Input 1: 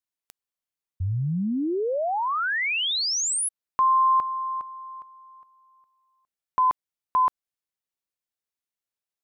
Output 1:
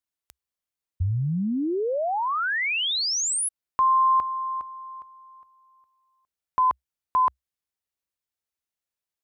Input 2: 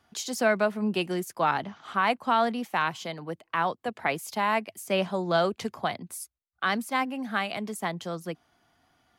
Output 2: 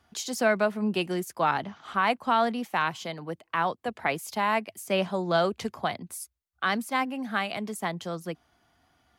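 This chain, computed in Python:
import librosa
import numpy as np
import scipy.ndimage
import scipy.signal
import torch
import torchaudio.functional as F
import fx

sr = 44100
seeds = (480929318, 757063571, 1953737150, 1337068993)

y = fx.peak_eq(x, sr, hz=65.0, db=10.0, octaves=0.53)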